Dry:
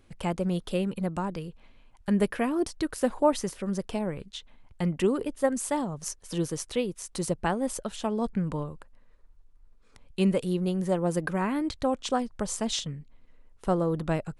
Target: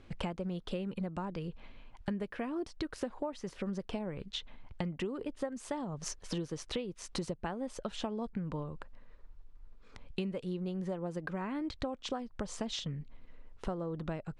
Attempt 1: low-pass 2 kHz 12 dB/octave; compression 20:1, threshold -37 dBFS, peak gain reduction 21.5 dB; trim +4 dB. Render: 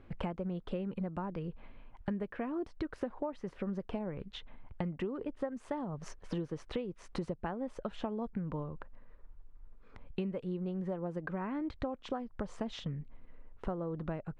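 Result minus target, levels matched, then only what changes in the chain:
4 kHz band -8.0 dB
change: low-pass 4.8 kHz 12 dB/octave

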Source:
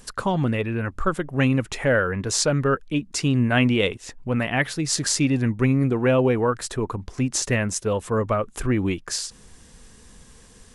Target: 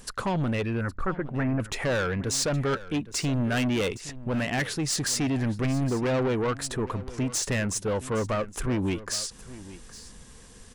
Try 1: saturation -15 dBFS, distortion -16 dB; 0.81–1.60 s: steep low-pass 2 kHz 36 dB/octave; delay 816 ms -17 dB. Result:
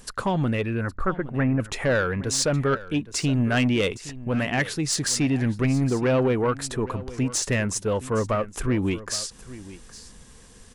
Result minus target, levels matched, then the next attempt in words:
saturation: distortion -8 dB
saturation -22.5 dBFS, distortion -9 dB; 0.81–1.60 s: steep low-pass 2 kHz 36 dB/octave; delay 816 ms -17 dB

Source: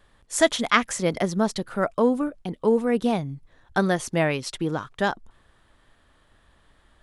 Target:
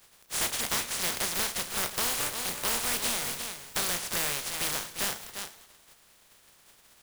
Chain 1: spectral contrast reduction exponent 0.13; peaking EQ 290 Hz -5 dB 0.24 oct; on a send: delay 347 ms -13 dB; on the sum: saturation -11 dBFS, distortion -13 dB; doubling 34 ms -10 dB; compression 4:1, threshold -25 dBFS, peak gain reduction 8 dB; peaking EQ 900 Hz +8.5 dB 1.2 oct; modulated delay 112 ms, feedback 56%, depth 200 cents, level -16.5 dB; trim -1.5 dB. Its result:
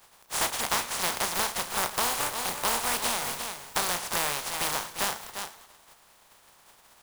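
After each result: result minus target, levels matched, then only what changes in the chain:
1 kHz band +6.0 dB; saturation: distortion -5 dB
remove: second peaking EQ 900 Hz +8.5 dB 1.2 oct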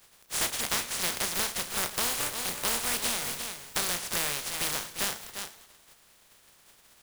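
saturation: distortion -5 dB
change: saturation -17.5 dBFS, distortion -8 dB

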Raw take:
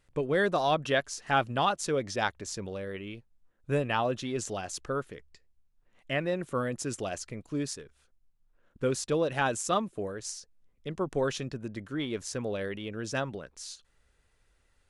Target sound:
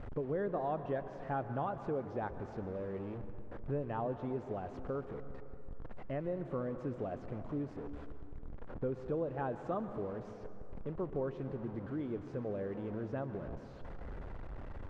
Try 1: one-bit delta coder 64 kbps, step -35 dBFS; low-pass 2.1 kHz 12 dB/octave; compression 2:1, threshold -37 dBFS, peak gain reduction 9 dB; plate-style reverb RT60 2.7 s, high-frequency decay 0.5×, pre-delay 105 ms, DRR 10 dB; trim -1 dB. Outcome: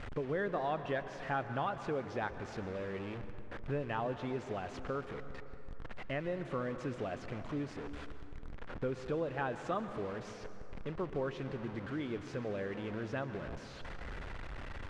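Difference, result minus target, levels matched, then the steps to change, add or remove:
2 kHz band +8.5 dB
change: low-pass 870 Hz 12 dB/octave

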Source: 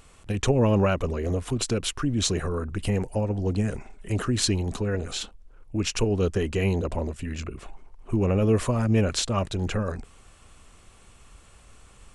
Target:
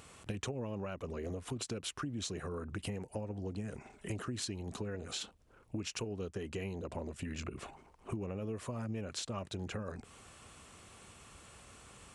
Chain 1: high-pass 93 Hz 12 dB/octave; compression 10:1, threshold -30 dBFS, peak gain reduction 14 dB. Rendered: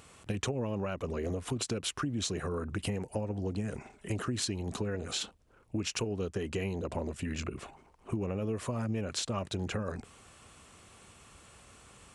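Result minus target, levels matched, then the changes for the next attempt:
compression: peak gain reduction -6 dB
change: compression 10:1, threshold -36.5 dBFS, peak gain reduction 20 dB

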